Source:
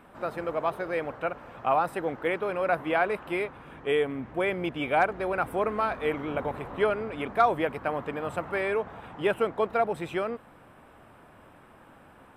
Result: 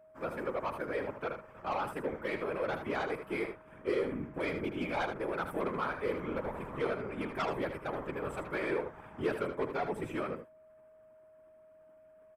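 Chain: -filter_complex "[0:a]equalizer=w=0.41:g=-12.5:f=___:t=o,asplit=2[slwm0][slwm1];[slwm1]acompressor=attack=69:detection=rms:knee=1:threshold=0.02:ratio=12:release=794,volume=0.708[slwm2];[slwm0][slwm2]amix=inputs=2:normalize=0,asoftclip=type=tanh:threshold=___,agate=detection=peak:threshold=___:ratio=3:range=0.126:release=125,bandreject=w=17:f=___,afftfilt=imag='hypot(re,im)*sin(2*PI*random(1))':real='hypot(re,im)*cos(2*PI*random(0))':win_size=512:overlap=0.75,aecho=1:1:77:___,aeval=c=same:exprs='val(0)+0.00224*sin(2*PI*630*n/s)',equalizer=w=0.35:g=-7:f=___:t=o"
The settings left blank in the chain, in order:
3900, 0.106, 0.0126, 2800, 0.376, 710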